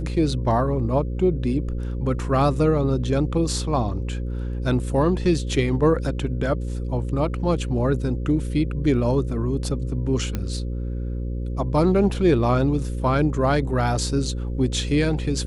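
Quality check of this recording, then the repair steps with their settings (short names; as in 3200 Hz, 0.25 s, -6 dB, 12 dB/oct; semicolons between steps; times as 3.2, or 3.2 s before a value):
buzz 60 Hz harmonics 9 -27 dBFS
10.35 pop -13 dBFS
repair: de-click; de-hum 60 Hz, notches 9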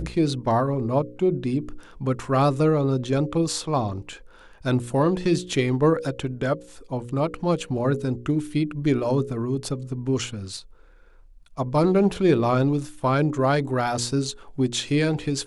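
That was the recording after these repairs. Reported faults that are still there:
none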